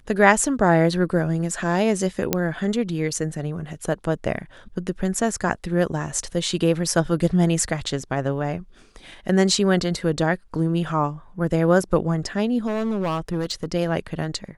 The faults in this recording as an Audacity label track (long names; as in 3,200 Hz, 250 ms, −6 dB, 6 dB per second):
2.330000	2.330000	click −3 dBFS
12.660000	13.740000	clipping −20 dBFS